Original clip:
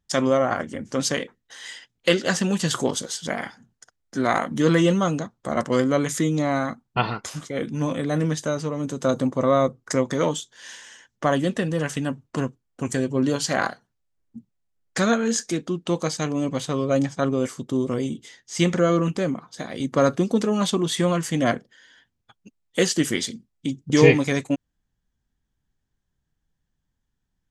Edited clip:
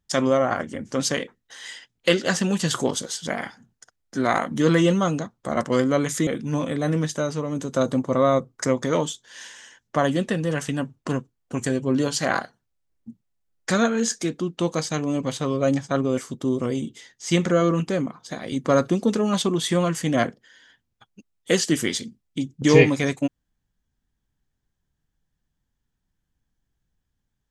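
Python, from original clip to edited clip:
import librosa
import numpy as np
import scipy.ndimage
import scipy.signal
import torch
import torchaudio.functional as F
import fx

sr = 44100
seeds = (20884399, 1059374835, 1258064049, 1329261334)

y = fx.edit(x, sr, fx.cut(start_s=6.27, length_s=1.28), tone=tone)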